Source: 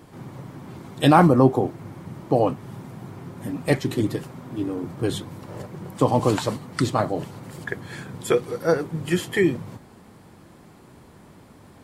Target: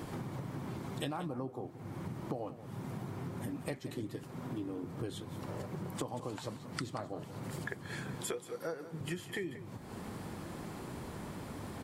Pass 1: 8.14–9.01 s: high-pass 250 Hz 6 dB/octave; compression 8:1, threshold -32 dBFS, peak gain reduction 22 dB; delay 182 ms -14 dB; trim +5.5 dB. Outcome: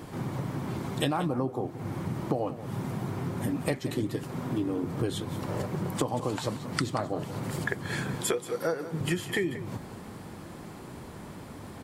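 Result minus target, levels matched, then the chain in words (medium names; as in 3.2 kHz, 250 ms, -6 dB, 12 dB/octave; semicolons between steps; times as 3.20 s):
compression: peak gain reduction -10 dB
8.14–9.01 s: high-pass 250 Hz 6 dB/octave; compression 8:1, threshold -43.5 dBFS, peak gain reduction 32 dB; delay 182 ms -14 dB; trim +5.5 dB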